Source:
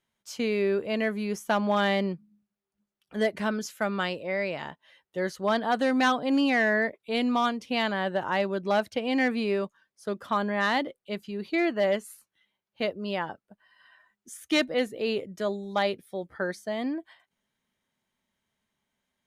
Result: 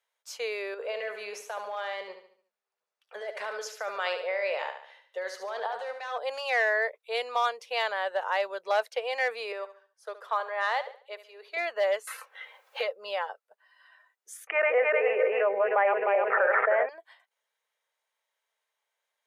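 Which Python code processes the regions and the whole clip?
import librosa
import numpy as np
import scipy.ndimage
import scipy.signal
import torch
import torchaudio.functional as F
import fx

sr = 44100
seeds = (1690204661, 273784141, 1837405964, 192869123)

y = fx.chain(x, sr, fx.over_compress(threshold_db=-30.0, ratio=-1.0),
    fx.high_shelf(hz=7900.0, db=-12.0),
    fx.echo_feedback(ms=72, feedback_pct=42, wet_db=-8.0), at=(0.74, 6.18))
y = fx.chain(y, sr, fx.highpass(hz=450.0, slope=12),
    fx.high_shelf(hz=2600.0, db=-7.5),
    fx.echo_feedback(ms=71, feedback_pct=37, wet_db=-14), at=(9.52, 11.57))
y = fx.chain(y, sr, fx.comb(ms=3.8, depth=0.39),
    fx.band_squash(depth_pct=100), at=(12.07, 13.27))
y = fx.chain(y, sr, fx.reverse_delay_fb(ms=153, feedback_pct=54, wet_db=-3.5),
    fx.steep_lowpass(hz=2500.0, slope=72),
    fx.env_flatten(amount_pct=100), at=(14.47, 16.89))
y = scipy.signal.sosfilt(scipy.signal.ellip(4, 1.0, 40, 460.0, 'highpass', fs=sr, output='sos'), y)
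y = fx.notch(y, sr, hz=3100.0, q=26.0)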